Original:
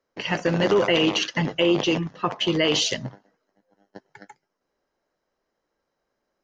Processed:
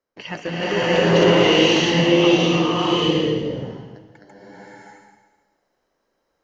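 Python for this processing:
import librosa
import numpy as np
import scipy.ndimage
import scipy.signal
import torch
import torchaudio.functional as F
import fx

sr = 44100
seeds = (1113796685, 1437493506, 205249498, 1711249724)

y = fx.steep_lowpass(x, sr, hz=540.0, slope=96, at=(2.6, 3.06))
y = fx.rev_bloom(y, sr, seeds[0], attack_ms=640, drr_db=-11.5)
y = y * librosa.db_to_amplitude(-5.5)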